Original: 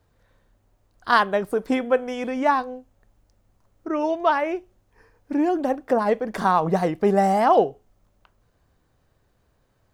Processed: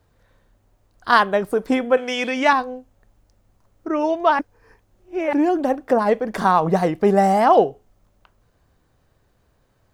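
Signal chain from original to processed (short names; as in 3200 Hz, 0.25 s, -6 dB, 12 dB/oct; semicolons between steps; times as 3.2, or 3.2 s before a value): 1.97–2.53 weighting filter D; 4.39–5.33 reverse; gain +3 dB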